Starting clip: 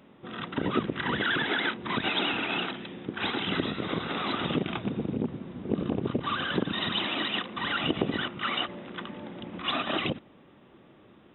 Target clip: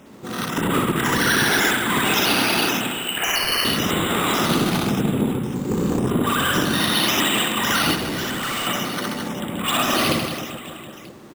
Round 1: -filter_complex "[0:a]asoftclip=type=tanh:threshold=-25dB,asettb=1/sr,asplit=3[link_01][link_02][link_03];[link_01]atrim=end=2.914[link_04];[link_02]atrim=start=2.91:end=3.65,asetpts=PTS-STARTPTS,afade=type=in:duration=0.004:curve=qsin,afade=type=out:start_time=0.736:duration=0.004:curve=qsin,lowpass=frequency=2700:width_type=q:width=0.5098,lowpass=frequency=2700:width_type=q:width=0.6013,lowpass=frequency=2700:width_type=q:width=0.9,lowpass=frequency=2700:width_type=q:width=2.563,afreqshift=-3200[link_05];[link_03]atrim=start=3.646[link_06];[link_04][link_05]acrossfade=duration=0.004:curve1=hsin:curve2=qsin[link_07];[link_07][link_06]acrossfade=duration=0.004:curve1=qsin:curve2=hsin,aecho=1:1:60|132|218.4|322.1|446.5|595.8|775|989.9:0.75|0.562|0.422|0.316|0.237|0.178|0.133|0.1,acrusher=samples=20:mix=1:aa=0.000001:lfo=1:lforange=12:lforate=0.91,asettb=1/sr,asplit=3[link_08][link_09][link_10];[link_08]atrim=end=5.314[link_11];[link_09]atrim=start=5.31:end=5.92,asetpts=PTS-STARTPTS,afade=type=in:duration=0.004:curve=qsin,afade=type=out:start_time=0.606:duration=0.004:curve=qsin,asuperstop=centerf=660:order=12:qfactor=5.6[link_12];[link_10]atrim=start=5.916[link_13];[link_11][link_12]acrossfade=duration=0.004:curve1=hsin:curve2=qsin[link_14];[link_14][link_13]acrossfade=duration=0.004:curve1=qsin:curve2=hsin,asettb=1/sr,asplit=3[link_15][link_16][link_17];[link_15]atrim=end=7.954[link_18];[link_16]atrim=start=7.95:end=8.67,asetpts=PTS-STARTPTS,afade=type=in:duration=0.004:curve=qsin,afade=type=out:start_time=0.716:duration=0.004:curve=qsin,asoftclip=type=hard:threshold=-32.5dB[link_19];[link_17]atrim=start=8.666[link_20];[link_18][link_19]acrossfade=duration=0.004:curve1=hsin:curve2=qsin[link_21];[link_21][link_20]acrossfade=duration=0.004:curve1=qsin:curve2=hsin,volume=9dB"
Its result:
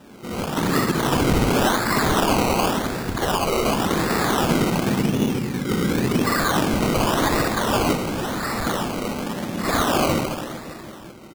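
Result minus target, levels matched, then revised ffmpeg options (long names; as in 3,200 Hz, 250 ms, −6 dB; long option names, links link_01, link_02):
sample-and-hold swept by an LFO: distortion +10 dB
-filter_complex "[0:a]asoftclip=type=tanh:threshold=-25dB,asettb=1/sr,asplit=3[link_01][link_02][link_03];[link_01]atrim=end=2.914[link_04];[link_02]atrim=start=2.91:end=3.65,asetpts=PTS-STARTPTS,afade=type=in:duration=0.004:curve=qsin,afade=type=out:start_time=0.736:duration=0.004:curve=qsin,lowpass=frequency=2700:width_type=q:width=0.5098,lowpass=frequency=2700:width_type=q:width=0.6013,lowpass=frequency=2700:width_type=q:width=0.9,lowpass=frequency=2700:width_type=q:width=2.563,afreqshift=-3200[link_05];[link_03]atrim=start=3.646[link_06];[link_04][link_05]acrossfade=duration=0.004:curve1=hsin:curve2=qsin[link_07];[link_07][link_06]acrossfade=duration=0.004:curve1=qsin:curve2=hsin,aecho=1:1:60|132|218.4|322.1|446.5|595.8|775|989.9:0.75|0.562|0.422|0.316|0.237|0.178|0.133|0.1,acrusher=samples=5:mix=1:aa=0.000001:lfo=1:lforange=3:lforate=0.91,asettb=1/sr,asplit=3[link_08][link_09][link_10];[link_08]atrim=end=5.314[link_11];[link_09]atrim=start=5.31:end=5.92,asetpts=PTS-STARTPTS,afade=type=in:duration=0.004:curve=qsin,afade=type=out:start_time=0.606:duration=0.004:curve=qsin,asuperstop=centerf=660:order=12:qfactor=5.6[link_12];[link_10]atrim=start=5.916[link_13];[link_11][link_12]acrossfade=duration=0.004:curve1=hsin:curve2=qsin[link_14];[link_14][link_13]acrossfade=duration=0.004:curve1=qsin:curve2=hsin,asettb=1/sr,asplit=3[link_15][link_16][link_17];[link_15]atrim=end=7.954[link_18];[link_16]atrim=start=7.95:end=8.67,asetpts=PTS-STARTPTS,afade=type=in:duration=0.004:curve=qsin,afade=type=out:start_time=0.716:duration=0.004:curve=qsin,asoftclip=type=hard:threshold=-32.5dB[link_19];[link_17]atrim=start=8.666[link_20];[link_18][link_19]acrossfade=duration=0.004:curve1=hsin:curve2=qsin[link_21];[link_21][link_20]acrossfade=duration=0.004:curve1=qsin:curve2=hsin,volume=9dB"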